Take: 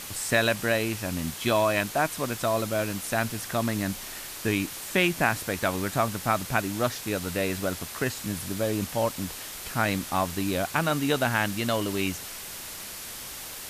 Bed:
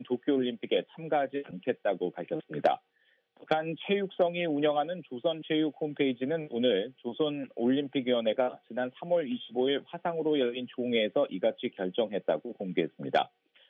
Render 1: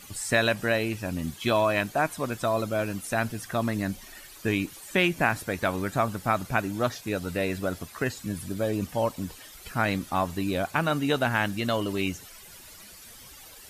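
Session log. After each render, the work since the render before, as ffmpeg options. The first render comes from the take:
-af "afftdn=nr=13:nf=-39"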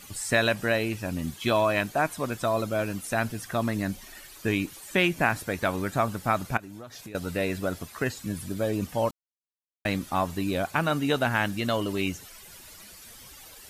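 -filter_complex "[0:a]asettb=1/sr,asplit=3[s0][s1][s2];[s0]atrim=end=6.574[s3];[s1]atrim=start=6.57:end=7.15,asetpts=PTS-STARTPTS,afade=t=in:d=0.004:c=qsin,afade=t=out:st=0.576:d=0.004:c=qsin,acompressor=threshold=0.0141:ratio=16:attack=3.2:release=140:knee=1:detection=peak[s4];[s2]atrim=start=7.146[s5];[s3][s4]acrossfade=d=0.004:c1=hsin:c2=qsin[s6];[s6][s5]acrossfade=d=0.004:c1=qsin:c2=hsin,asplit=3[s7][s8][s9];[s7]atrim=end=9.11,asetpts=PTS-STARTPTS,afade=t=out:st=9.106:d=0.004:c=hsin[s10];[s8]atrim=start=9.11:end=9.85,asetpts=PTS-STARTPTS,volume=0[s11];[s9]atrim=start=9.85,asetpts=PTS-STARTPTS,afade=t=in:d=0.004:c=hsin[s12];[s10][s11][s12]concat=n=3:v=0:a=1"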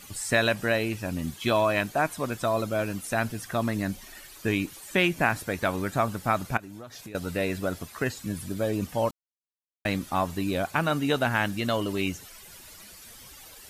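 -af anull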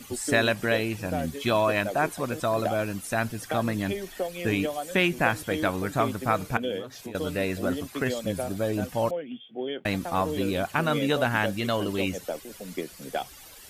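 -filter_complex "[1:a]volume=0.596[s0];[0:a][s0]amix=inputs=2:normalize=0"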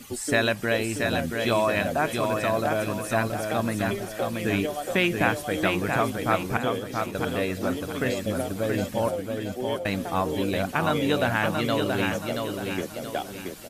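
-af "aecho=1:1:678|1356|2034|2712|3390:0.596|0.226|0.086|0.0327|0.0124"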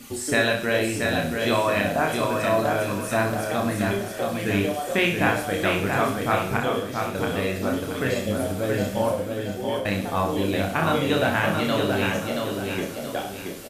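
-af "aecho=1:1:30|63|99.3|139.2|183.2:0.631|0.398|0.251|0.158|0.1"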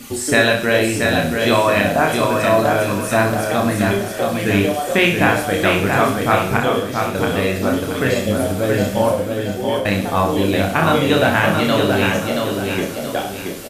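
-af "volume=2.24,alimiter=limit=0.891:level=0:latency=1"

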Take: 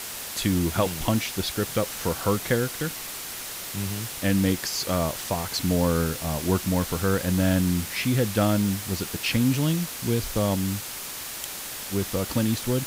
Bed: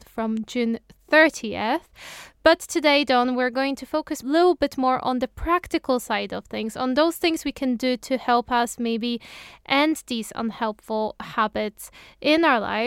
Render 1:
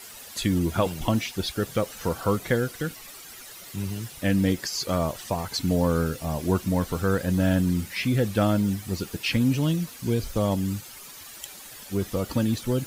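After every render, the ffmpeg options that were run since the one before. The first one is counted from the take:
-af "afftdn=nr=12:nf=-36"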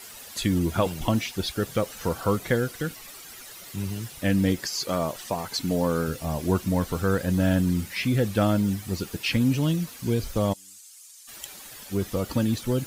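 -filter_complex "[0:a]asettb=1/sr,asplit=3[s0][s1][s2];[s0]atrim=end=4.714[s3];[s1]atrim=start=4.71:end=6.08,asetpts=PTS-STARTPTS,afade=t=in:d=0.004:c=qsin,afade=t=out:st=1.366:d=0.004:c=qsin,equalizer=f=65:w=0.85:g=-11.5[s4];[s2]atrim=start=6.076[s5];[s3][s4]acrossfade=d=0.004:c1=hsin:c2=qsin[s6];[s6][s5]acrossfade=d=0.004:c1=qsin:c2=hsin,asplit=3[s7][s8][s9];[s7]afade=t=out:st=10.52:d=0.02[s10];[s8]bandpass=f=7900:t=q:w=1.6,afade=t=in:st=10.52:d=0.02,afade=t=out:st=11.27:d=0.02[s11];[s9]afade=t=in:st=11.27:d=0.02[s12];[s10][s11][s12]amix=inputs=3:normalize=0"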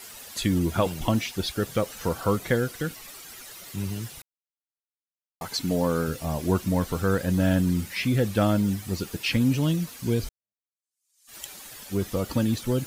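-filter_complex "[0:a]asplit=4[s0][s1][s2][s3];[s0]atrim=end=4.22,asetpts=PTS-STARTPTS,afade=t=out:st=4.216:d=0.004:c=hsin[s4];[s1]atrim=start=4.22:end=5.41,asetpts=PTS-STARTPTS,volume=0[s5];[s2]atrim=start=5.41:end=10.29,asetpts=PTS-STARTPTS,afade=t=in:d=0.004:c=hsin,afade=t=out:st=4.876:d=0.004:c=hsin[s6];[s3]atrim=start=10.29,asetpts=PTS-STARTPTS,afade=t=in:d=1.07:c=exp[s7];[s4][s5][s6][s7]concat=n=4:v=0:a=1"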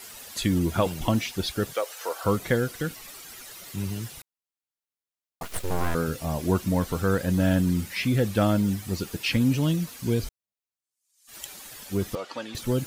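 -filter_complex "[0:a]asplit=3[s0][s1][s2];[s0]afade=t=out:st=1.72:d=0.02[s3];[s1]highpass=f=460:w=0.5412,highpass=f=460:w=1.3066,afade=t=in:st=1.72:d=0.02,afade=t=out:st=2.23:d=0.02[s4];[s2]afade=t=in:st=2.23:d=0.02[s5];[s3][s4][s5]amix=inputs=3:normalize=0,asettb=1/sr,asplit=3[s6][s7][s8];[s6]atrim=end=5.434[s9];[s7]atrim=start=5.43:end=5.95,asetpts=PTS-STARTPTS,afade=t=in:d=0.004:c=qsin,afade=t=out:st=0.516:d=0.004:c=qsin,aeval=exprs='abs(val(0))':c=same[s10];[s8]atrim=start=5.946[s11];[s9][s10]acrossfade=d=0.004:c1=hsin:c2=qsin[s12];[s12][s11]acrossfade=d=0.004:c1=qsin:c2=hsin,asettb=1/sr,asplit=3[s13][s14][s15];[s13]atrim=end=12.154[s16];[s14]atrim=start=12.15:end=12.55,asetpts=PTS-STARTPTS,afade=t=in:d=0.004:c=qsin,afade=t=out:st=0.396:d=0.004:c=qsin,highpass=610,lowpass=4400[s17];[s15]atrim=start=12.546[s18];[s16][s17]acrossfade=d=0.004:c1=hsin:c2=qsin[s19];[s19][s18]acrossfade=d=0.004:c1=qsin:c2=hsin"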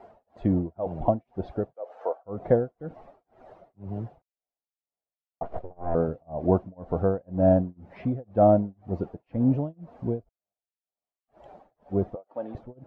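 -af "tremolo=f=2:d=0.99,lowpass=f=690:t=q:w=4.2"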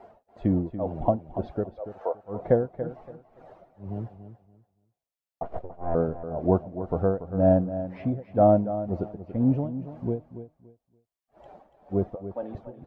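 -af "aecho=1:1:285|570|855:0.251|0.0553|0.0122"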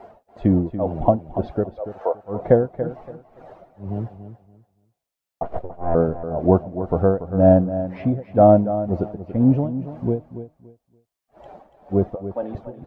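-af "volume=2.11,alimiter=limit=0.708:level=0:latency=1"

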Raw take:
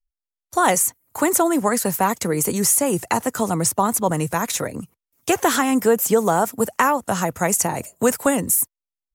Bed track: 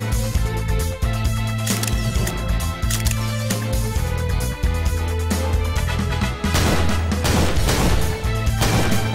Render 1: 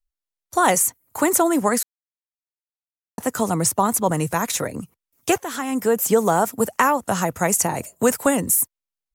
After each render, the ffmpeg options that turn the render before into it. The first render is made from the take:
-filter_complex "[0:a]asplit=4[s0][s1][s2][s3];[s0]atrim=end=1.83,asetpts=PTS-STARTPTS,afade=t=out:st=1.826:d=0.004:c=hsin[s4];[s1]atrim=start=1.83:end=3.18,asetpts=PTS-STARTPTS,volume=0[s5];[s2]atrim=start=3.18:end=5.38,asetpts=PTS-STARTPTS,afade=t=in:d=0.004:c=hsin,afade=t=out:st=2.196:d=0.004:c=hsin:silence=0.141254[s6];[s3]atrim=start=5.38,asetpts=PTS-STARTPTS,afade=t=in:d=0.74:silence=0.141254[s7];[s4][s5][s6][s7]concat=n=4:v=0:a=1"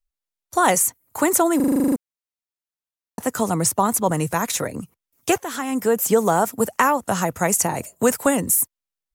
-filter_complex "[0:a]asplit=11[s0][s1][s2][s3][s4][s5][s6][s7][s8][s9][s10];[s0]atrim=end=1.602[s11];[s1]atrim=start=1.558:end=1.602[s12];[s2]atrim=start=1.558:end=1.602[s13];[s3]atrim=start=1.558:end=1.602[s14];[s4]atrim=start=1.558:end=1.602[s15];[s5]atrim=start=1.558:end=1.602[s16];[s6]atrim=start=1.558:end=1.602[s17];[s7]atrim=start=1.558:end=1.602[s18];[s8]atrim=start=1.558:end=1.602[s19];[s9]atrim=start=1.558:end=1.602[s20];[s10]atrim=start=1.958[s21];[s11][s12]acrossfade=d=0.004:c1=hsin:c2=hsin[s22];[s22][s13]acrossfade=d=0.004:c1=hsin:c2=hsin[s23];[s23][s14]acrossfade=d=0.004:c1=hsin:c2=hsin[s24];[s24][s15]acrossfade=d=0.004:c1=hsin:c2=hsin[s25];[s25][s16]acrossfade=d=0.004:c1=hsin:c2=hsin[s26];[s26][s17]acrossfade=d=0.004:c1=hsin:c2=hsin[s27];[s27][s18]acrossfade=d=0.004:c1=hsin:c2=hsin[s28];[s28][s19]acrossfade=d=0.004:c1=hsin:c2=hsin[s29];[s29][s20]acrossfade=d=0.004:c1=hsin:c2=hsin[s30];[s30][s21]acrossfade=d=0.004:c1=hsin:c2=hsin"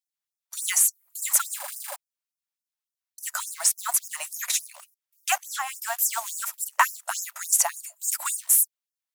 -af "acrusher=bits=5:mode=log:mix=0:aa=0.000001,afftfilt=real='re*gte(b*sr/1024,550*pow(5100/550,0.5+0.5*sin(2*PI*3.5*pts/sr)))':imag='im*gte(b*sr/1024,550*pow(5100/550,0.5+0.5*sin(2*PI*3.5*pts/sr)))':win_size=1024:overlap=0.75"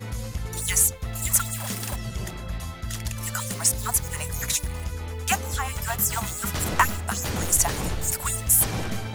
-filter_complex "[1:a]volume=0.282[s0];[0:a][s0]amix=inputs=2:normalize=0"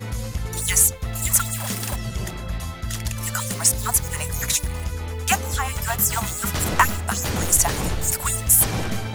-af "volume=1.5,alimiter=limit=0.708:level=0:latency=1"

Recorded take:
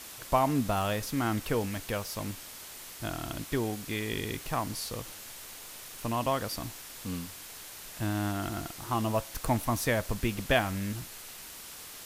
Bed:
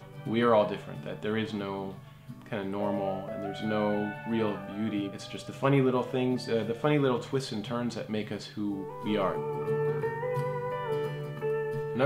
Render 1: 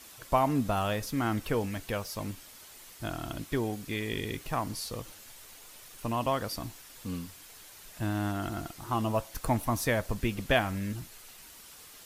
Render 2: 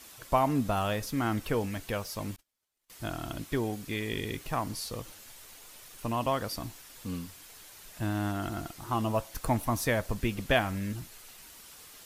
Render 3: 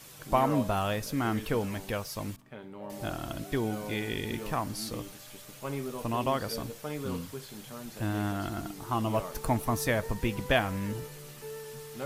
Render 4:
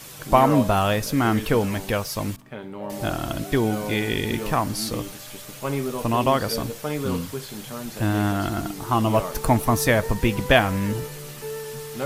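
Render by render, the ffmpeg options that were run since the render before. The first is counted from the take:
-af "afftdn=nr=7:nf=-46"
-filter_complex "[0:a]asettb=1/sr,asplit=3[s0][s1][s2];[s0]atrim=end=2.364[s3];[s1]atrim=start=2.36:end=2.9,asetpts=PTS-STARTPTS,afade=t=in:d=0.004:c=qsin,afade=t=out:st=0.536:d=0.004:c=qsin,agate=range=0.0178:threshold=0.00447:ratio=16:release=100:detection=peak[s4];[s2]atrim=start=2.896[s5];[s3][s4]acrossfade=d=0.004:c1=hsin:c2=qsin[s6];[s6][s5]acrossfade=d=0.004:c1=qsin:c2=hsin"
-filter_complex "[1:a]volume=0.266[s0];[0:a][s0]amix=inputs=2:normalize=0"
-af "volume=2.82"

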